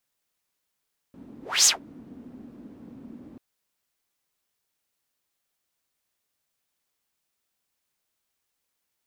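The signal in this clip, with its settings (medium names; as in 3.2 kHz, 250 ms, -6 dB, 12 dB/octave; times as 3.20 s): whoosh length 2.24 s, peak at 0.52 s, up 0.26 s, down 0.15 s, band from 250 Hz, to 6.8 kHz, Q 4.8, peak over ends 29.5 dB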